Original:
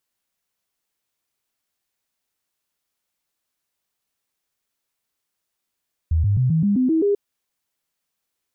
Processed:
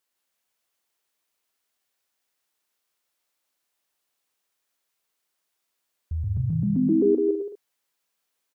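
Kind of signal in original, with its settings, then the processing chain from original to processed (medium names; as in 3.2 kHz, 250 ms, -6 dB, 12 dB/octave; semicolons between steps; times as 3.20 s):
stepped sine 80.4 Hz up, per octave 3, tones 8, 0.13 s, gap 0.00 s -15 dBFS
tone controls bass -9 dB, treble -1 dB; on a send: bouncing-ball echo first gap 160 ms, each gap 0.65×, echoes 5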